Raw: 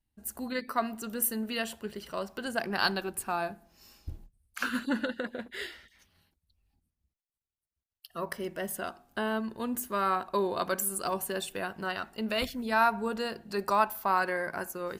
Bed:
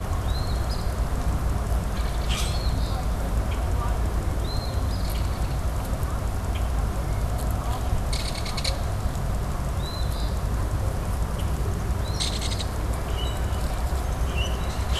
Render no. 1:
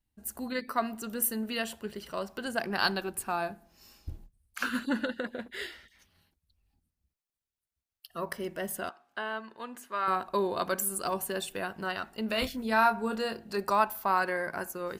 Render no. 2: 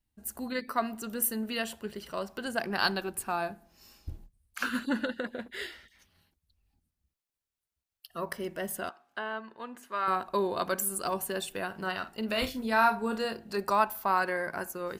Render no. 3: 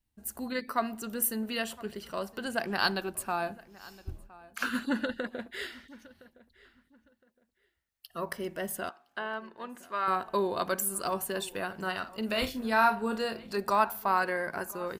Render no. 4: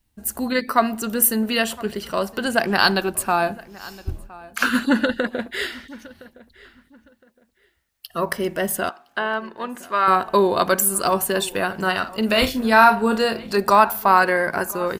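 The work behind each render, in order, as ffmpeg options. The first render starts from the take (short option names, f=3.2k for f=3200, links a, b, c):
-filter_complex "[0:a]asettb=1/sr,asplit=3[a][b][c];[a]atrim=end=8.894[d];[b]atrim=start=8.89:end=10.08,asetpts=PTS-STARTPTS,afade=t=in:d=0.004:c=qsin,afade=t=out:st=1.186:d=0.004:c=qsin,bandpass=f=1.7k:t=q:w=0.61[e];[c]atrim=start=10.076[f];[d][e]acrossfade=d=0.004:c1=hsin:c2=qsin[g];[g][f]acrossfade=d=0.004:c1=qsin:c2=hsin,asettb=1/sr,asplit=3[h][i][j];[h]atrim=end=12.284[k];[i]atrim=start=12.28:end=13.57,asetpts=PTS-STARTPTS,afade=t=in:d=0.004:c=qsin,afade=t=out:st=1.286:d=0.004:c=qsin,asplit=2[l][m];[m]adelay=27,volume=-8.5dB[n];[l][n]amix=inputs=2:normalize=0,atrim=end_sample=56889[o];[j]atrim=start=13.566[p];[k][o]acrossfade=d=0.004:c1=hsin:c2=qsin[q];[q][p]acrossfade=d=0.004:c1=qsin:c2=hsin"
-filter_complex "[0:a]asettb=1/sr,asplit=3[a][b][c];[a]atrim=end=9.194[d];[b]atrim=start=9.19:end=9.83,asetpts=PTS-STARTPTS,afade=t=in:d=0.004:c=qsin,afade=t=out:st=0.636:d=0.004:c=qsin,highshelf=f=4k:g=-7.5[e];[c]atrim=start=9.826[f];[d][e]acrossfade=d=0.004:c1=hsin:c2=qsin[g];[g][f]acrossfade=d=0.004:c1=qsin:c2=hsin,asettb=1/sr,asplit=3[h][i][j];[h]atrim=end=11.664[k];[i]atrim=start=11.66:end=13.25,asetpts=PTS-STARTPTS,afade=t=in:d=0.004:c=qsin,afade=t=out:st=1.586:d=0.004:c=qsin,asplit=2[l][m];[m]adelay=48,volume=-12dB[n];[l][n]amix=inputs=2:normalize=0,atrim=end_sample=70119[o];[j]atrim=start=13.246[p];[k][o]acrossfade=d=0.004:c1=hsin:c2=qsin[q];[q][p]acrossfade=d=0.004:c1=qsin:c2=hsin"
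-filter_complex "[0:a]asplit=2[a][b];[b]adelay=1014,lowpass=f=3.2k:p=1,volume=-20.5dB,asplit=2[c][d];[d]adelay=1014,lowpass=f=3.2k:p=1,volume=0.25[e];[a][c][e]amix=inputs=3:normalize=0"
-af "volume=12dB,alimiter=limit=-2dB:level=0:latency=1"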